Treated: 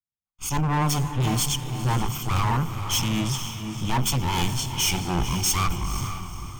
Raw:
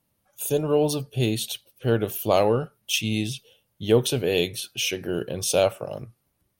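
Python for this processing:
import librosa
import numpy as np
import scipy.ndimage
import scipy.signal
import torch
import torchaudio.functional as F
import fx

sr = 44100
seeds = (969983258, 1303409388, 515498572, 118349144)

y = fx.lower_of_two(x, sr, delay_ms=0.93)
y = fx.peak_eq(y, sr, hz=15000.0, db=9.0, octaves=1.4)
y = fx.fixed_phaser(y, sr, hz=2700.0, stages=8)
y = fx.env_lowpass(y, sr, base_hz=2700.0, full_db=-25.0)
y = fx.rider(y, sr, range_db=10, speed_s=0.5)
y = np.clip(y, -10.0 ** (-27.5 / 20.0), 10.0 ** (-27.5 / 20.0))
y = fx.low_shelf(y, sr, hz=420.0, db=5.0)
y = fx.echo_diffused(y, sr, ms=487, feedback_pct=50, wet_db=-6.5)
y = fx.leveller(y, sr, passes=2)
y = fx.band_widen(y, sr, depth_pct=70)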